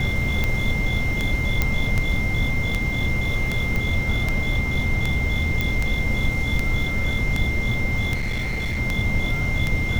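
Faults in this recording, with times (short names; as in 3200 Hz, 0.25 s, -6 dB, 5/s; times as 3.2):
tick 78 rpm -9 dBFS
tone 2100 Hz -26 dBFS
1.62 pop -6 dBFS
3.76 pop
5.61 pop -10 dBFS
8.14–8.8 clipped -21.5 dBFS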